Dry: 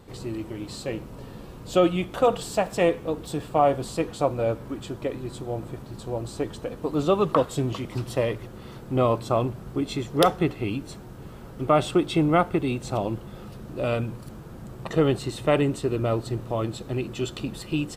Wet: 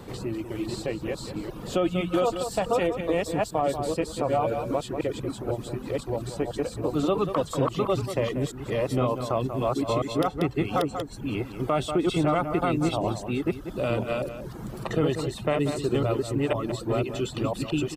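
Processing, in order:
delay that plays each chunk backwards 501 ms, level −1 dB
reverb reduction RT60 0.77 s
slap from a distant wall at 32 metres, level −12 dB
brickwall limiter −13 dBFS, peak gain reduction 9.5 dB
multiband upward and downward compressor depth 40%
level −1.5 dB

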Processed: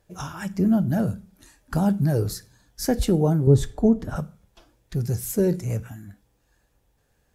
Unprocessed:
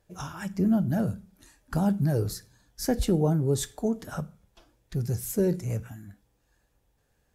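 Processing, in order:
0:03.47–0:04.16: spectral tilt −3 dB per octave
level +3.5 dB

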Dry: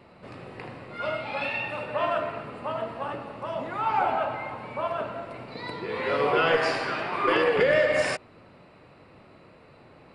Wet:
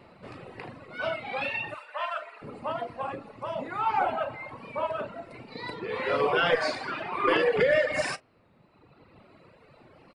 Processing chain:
0:01.74–0:02.42: high-pass filter 1,000 Hz 12 dB per octave
double-tracking delay 37 ms −12 dB
reverb reduction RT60 1.5 s
wow of a warped record 33 1/3 rpm, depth 100 cents

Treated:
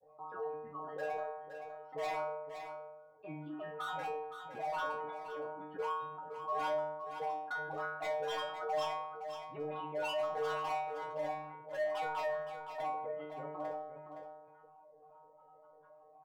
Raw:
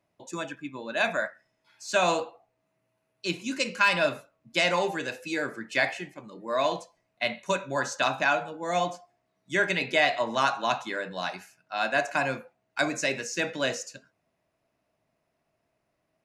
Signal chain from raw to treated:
high-shelf EQ 3,100 Hz −11.5 dB
in parallel at 0 dB: output level in coarse steps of 19 dB
on the sum: formant resonators in series a
granular cloud, grains 20 per second, spray 16 ms, pitch spread up and down by 7 semitones
gain into a clipping stage and back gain 35 dB
stiff-string resonator 150 Hz, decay 0.63 s, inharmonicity 0.002
multi-tap delay 42/516 ms −19.5/−17 dB
on a send at −15.5 dB: convolution reverb RT60 0.45 s, pre-delay 5 ms
on the sum: envelope flattener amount 50%
level +12.5 dB

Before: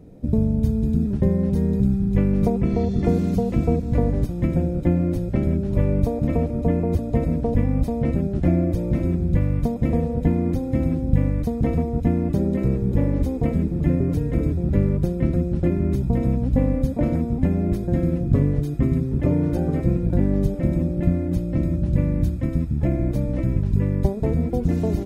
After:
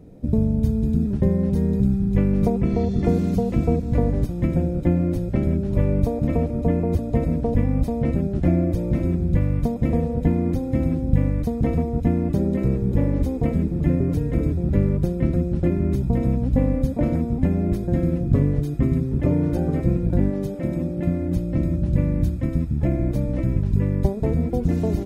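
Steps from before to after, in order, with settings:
0:20.29–0:21.20: high-pass filter 300 Hz → 110 Hz 6 dB per octave

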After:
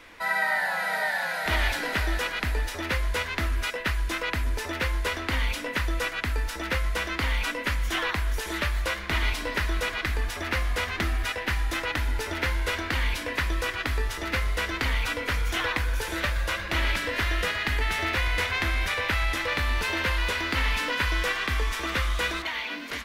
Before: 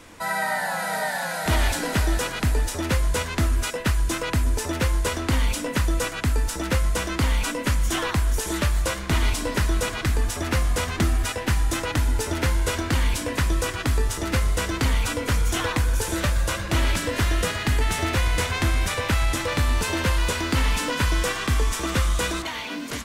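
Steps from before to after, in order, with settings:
octave-band graphic EQ 125/250/2,000/4,000/8,000 Hz −10/−3/+7/+3/−9 dB
level −4 dB

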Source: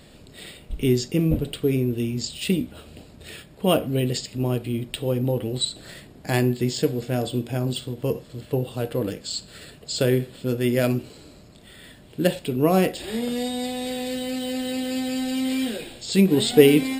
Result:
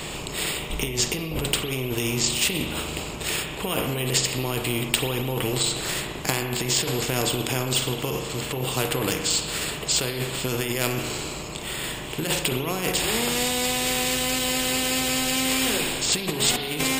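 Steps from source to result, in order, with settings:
EQ curve with evenly spaced ripples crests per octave 0.72, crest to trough 8 dB
compressor whose output falls as the input rises −25 dBFS, ratio −1
spring reverb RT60 1 s, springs 38 ms, chirp 25 ms, DRR 9.5 dB
every bin compressed towards the loudest bin 2 to 1
level +5.5 dB

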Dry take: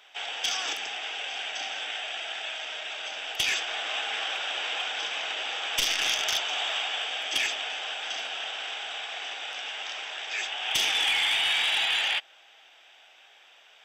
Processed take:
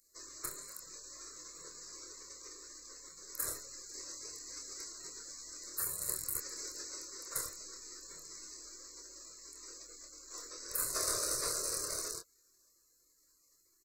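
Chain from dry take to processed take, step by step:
gate on every frequency bin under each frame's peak −25 dB weak
phaser with its sweep stopped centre 840 Hz, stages 6
double-tracking delay 26 ms −5 dB
level +9 dB

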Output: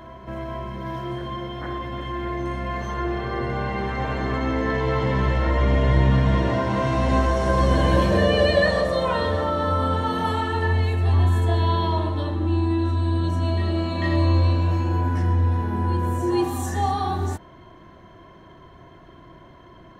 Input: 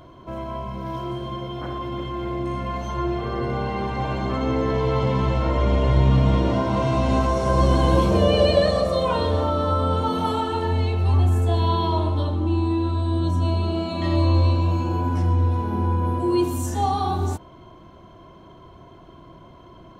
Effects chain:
parametric band 1,800 Hz +13 dB 0.33 octaves
on a send: backwards echo 444 ms −10.5 dB
on the sum: level −1.5 dB

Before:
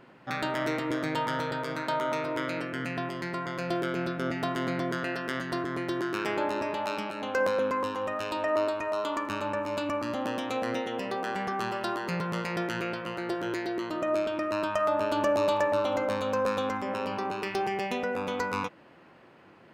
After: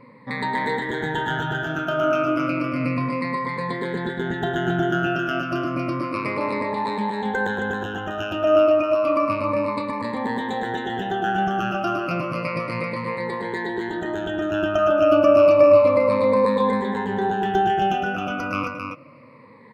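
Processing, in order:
rippled gain that drifts along the octave scale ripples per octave 0.96, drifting −0.31 Hz, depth 23 dB
bass and treble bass +5 dB, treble −11 dB
loudspeakers that aren't time-aligned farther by 37 metres −9 dB, 92 metres −5 dB

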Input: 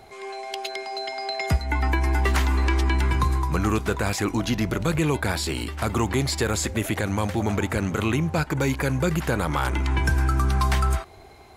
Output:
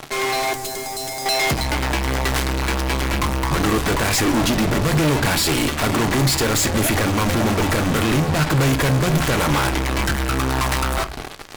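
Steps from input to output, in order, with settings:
fuzz pedal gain 45 dB, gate −43 dBFS
0:00.53–0:01.26: drawn EQ curve 110 Hz 0 dB, 3,000 Hz −15 dB, 7,500 Hz −1 dB
on a send: convolution reverb RT60 0.25 s, pre-delay 3 ms, DRR 9.5 dB
on the sum: level −4 dB

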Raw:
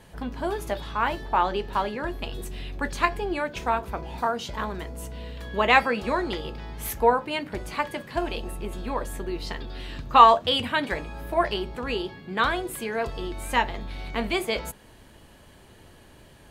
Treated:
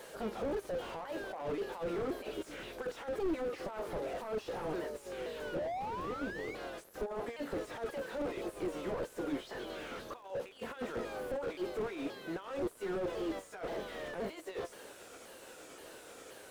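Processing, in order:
pitch shifter swept by a sawtooth −5 semitones, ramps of 526 ms
first difference
compressor whose output falls as the input rises −52 dBFS, ratio −1
surface crackle 510 per second −57 dBFS
drawn EQ curve 160 Hz 0 dB, 500 Hz +13 dB, 810 Hz +1 dB, 1,500 Hz 0 dB, 2,200 Hz −7 dB
sound drawn into the spectrogram rise, 0:05.54–0:06.55, 540–2,300 Hz −44 dBFS
slew-rate limiting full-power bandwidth 2.8 Hz
level +11.5 dB

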